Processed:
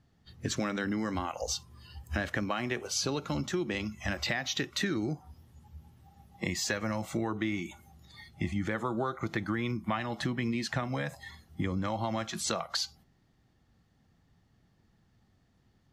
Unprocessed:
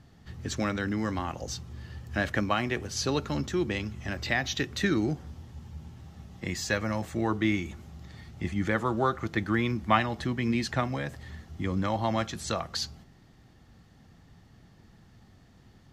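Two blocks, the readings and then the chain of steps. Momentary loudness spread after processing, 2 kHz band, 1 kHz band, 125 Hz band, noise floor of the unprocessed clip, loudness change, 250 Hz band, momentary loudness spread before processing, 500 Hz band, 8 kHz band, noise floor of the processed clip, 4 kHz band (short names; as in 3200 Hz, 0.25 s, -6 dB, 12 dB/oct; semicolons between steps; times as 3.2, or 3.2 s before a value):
7 LU, -3.5 dB, -5.5 dB, -4.0 dB, -57 dBFS, -3.5 dB, -3.5 dB, 18 LU, -4.0 dB, +2.0 dB, -69 dBFS, 0.0 dB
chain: spectral noise reduction 18 dB; in parallel at -1 dB: limiter -18.5 dBFS, peak gain reduction 9 dB; on the sum: compressor 6:1, threshold -30 dBFS, peak gain reduction 15 dB; gain +1 dB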